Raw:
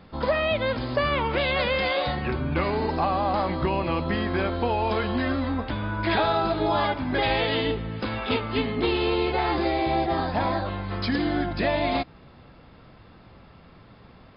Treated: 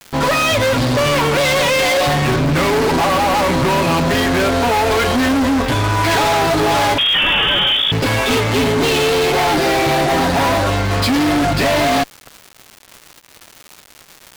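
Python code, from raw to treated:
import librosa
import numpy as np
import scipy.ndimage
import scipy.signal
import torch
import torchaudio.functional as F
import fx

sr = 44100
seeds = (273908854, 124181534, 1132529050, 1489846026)

y = x + 0.8 * np.pad(x, (int(7.2 * sr / 1000.0), 0))[:len(x)]
y = fx.fuzz(y, sr, gain_db=33.0, gate_db=-39.0)
y = fx.freq_invert(y, sr, carrier_hz=3500, at=(6.98, 7.92))
y = fx.dmg_crackle(y, sr, seeds[0], per_s=370.0, level_db=-26.0)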